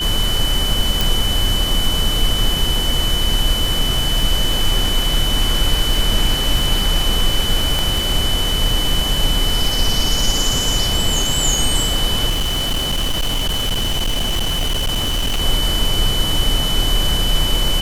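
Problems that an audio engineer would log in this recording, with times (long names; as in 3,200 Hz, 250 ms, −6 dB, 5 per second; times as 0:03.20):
surface crackle 150 per second −23 dBFS
whistle 3,000 Hz −20 dBFS
0:01.01: click
0:07.79: click
0:12.29–0:15.42: clipping −15 dBFS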